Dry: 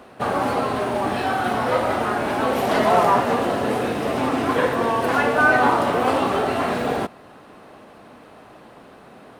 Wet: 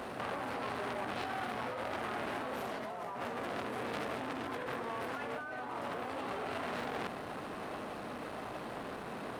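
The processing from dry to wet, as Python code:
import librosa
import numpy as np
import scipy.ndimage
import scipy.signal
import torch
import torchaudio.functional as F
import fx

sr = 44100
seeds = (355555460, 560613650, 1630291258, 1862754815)

y = fx.over_compress(x, sr, threshold_db=-31.0, ratio=-1.0)
y = fx.transformer_sat(y, sr, knee_hz=2300.0)
y = y * librosa.db_to_amplitude(-4.5)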